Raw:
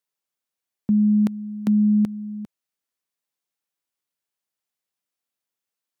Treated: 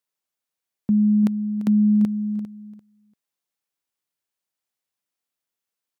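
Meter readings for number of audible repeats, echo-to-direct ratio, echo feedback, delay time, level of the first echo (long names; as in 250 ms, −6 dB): 2, −14.0 dB, 19%, 343 ms, −14.0 dB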